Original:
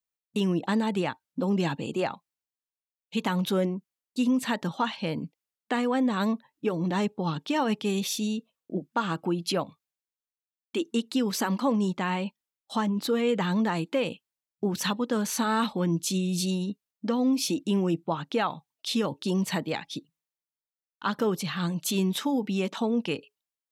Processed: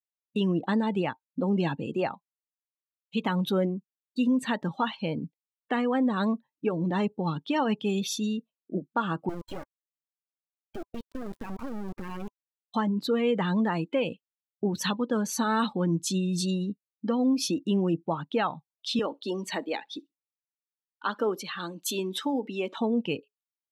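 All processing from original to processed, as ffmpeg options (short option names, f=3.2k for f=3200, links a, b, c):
-filter_complex "[0:a]asettb=1/sr,asplit=3[a][b][c];[a]atrim=end=9.294[d];[b]atrim=start=9.29:end=12.74,asetpts=PTS-STARTPTS,afade=t=in:d=0.004:c=qsin,afade=t=out:st=3.446:d=0.004:c=qsin,lowpass=2.4k,acompressor=threshold=-28dB:ratio=6:attack=3.2:release=140:knee=1:detection=peak,acrusher=bits=3:dc=4:mix=0:aa=0.000001[e];[c]atrim=start=12.736[f];[d][e]acrossfade=d=0.004:c1=hsin:c2=qsin[g];[g][f]acrossfade=d=0.004:c1=qsin:c2=hsin,asettb=1/sr,asplit=3[h][i][j];[h]atrim=end=18.994[k];[i]atrim=start=18.99:end=22.77,asetpts=PTS-STARTPTS,afade=t=in:d=0.004:c=qsin,afade=t=out:st=3.776:d=0.004:c=qsin,highpass=f=260:w=0.5412,highpass=f=260:w=1.3066,aecho=1:1:64|128:0.075|0.012,atrim=end_sample=166698[l];[j]atrim=start=22.766[m];[k][l]acrossfade=d=0.004:c1=hsin:c2=qsin[n];[n][m]acrossfade=d=0.004:c1=qsin:c2=hsin,afftdn=nr=16:nf=-37,bandreject=f=1k:w=29"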